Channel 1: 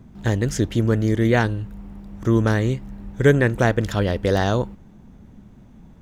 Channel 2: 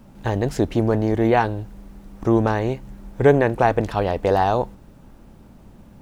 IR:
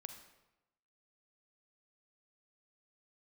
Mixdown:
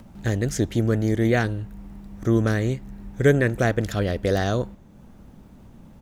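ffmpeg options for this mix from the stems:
-filter_complex "[0:a]highshelf=f=6.6k:g=6,volume=-4.5dB,asplit=2[a][b];[b]volume=-17.5dB[c];[1:a]acompressor=mode=upward:threshold=-23dB:ratio=2.5,adelay=0.9,volume=-14.5dB[d];[2:a]atrim=start_sample=2205[e];[c][e]afir=irnorm=-1:irlink=0[f];[a][d][f]amix=inputs=3:normalize=0"

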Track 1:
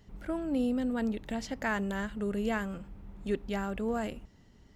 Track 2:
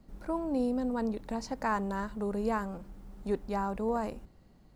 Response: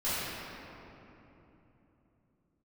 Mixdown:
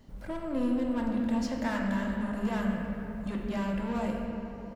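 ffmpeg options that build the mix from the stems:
-filter_complex "[0:a]volume=-3dB,asplit=2[a][b];[b]volume=-10.5dB[c];[1:a]asoftclip=type=tanh:threshold=-36.5dB,volume=-1,adelay=3.1,volume=-0.5dB,asplit=3[d][e][f];[e]volume=-13dB[g];[f]apad=whole_len=209704[h];[a][h]sidechaincompress=threshold=-44dB:ratio=8:attack=16:release=390[i];[2:a]atrim=start_sample=2205[j];[c][g]amix=inputs=2:normalize=0[k];[k][j]afir=irnorm=-1:irlink=0[l];[i][d][l]amix=inputs=3:normalize=0"

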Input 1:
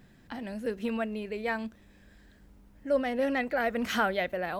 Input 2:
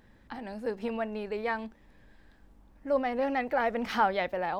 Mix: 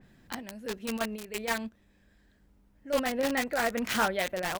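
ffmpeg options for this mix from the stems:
-filter_complex "[0:a]adynamicequalizer=threshold=0.00501:dfrequency=3500:dqfactor=0.7:tfrequency=3500:tqfactor=0.7:attack=5:release=100:ratio=0.375:range=2.5:mode=cutabove:tftype=highshelf,volume=-1dB[a];[1:a]firequalizer=gain_entry='entry(130,0);entry(500,-24);entry(880,7);entry(1400,5);entry(2000,10)':delay=0.05:min_phase=1,acrossover=split=130[b][c];[c]acompressor=threshold=-33dB:ratio=4[d];[b][d]amix=inputs=2:normalize=0,acrusher=bits=4:mix=0:aa=0.000001,volume=-1,adelay=22,volume=0dB,asplit=2[e][f];[f]apad=whole_len=202478[g];[a][g]sidechaingate=range=-6dB:threshold=-47dB:ratio=16:detection=peak[h];[h][e]amix=inputs=2:normalize=0"

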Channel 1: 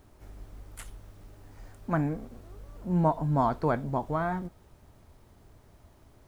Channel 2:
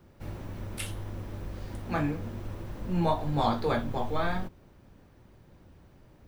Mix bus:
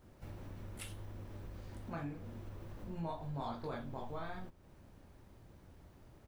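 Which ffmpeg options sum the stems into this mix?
-filter_complex "[0:a]volume=-8dB[a];[1:a]adelay=18,volume=-5dB[b];[a][b]amix=inputs=2:normalize=0,acompressor=threshold=-48dB:ratio=2"

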